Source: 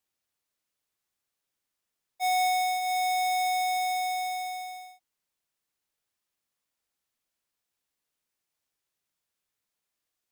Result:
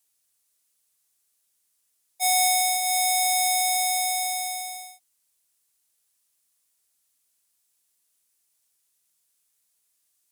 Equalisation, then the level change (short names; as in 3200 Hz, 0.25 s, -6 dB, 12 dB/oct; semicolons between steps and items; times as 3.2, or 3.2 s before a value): high shelf 3400 Hz +10.5 dB; bell 9700 Hz +8 dB 1.1 oct; 0.0 dB